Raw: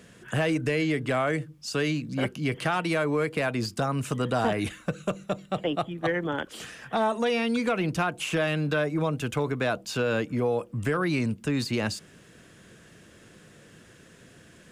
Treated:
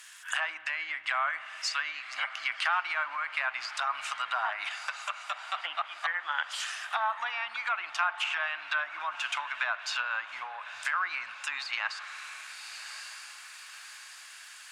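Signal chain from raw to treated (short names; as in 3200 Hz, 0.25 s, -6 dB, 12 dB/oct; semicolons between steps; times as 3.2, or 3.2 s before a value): on a send: diffused feedback echo 1.131 s, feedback 51%, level -15 dB; on the sum: crackle 160/s -51 dBFS; tilt +2 dB/oct; treble ducked by the level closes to 1500 Hz, closed at -23.5 dBFS; inverse Chebyshev high-pass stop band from 480 Hz, stop band 40 dB; spring tank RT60 3.4 s, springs 57 ms, chirp 30 ms, DRR 15 dB; gain +3.5 dB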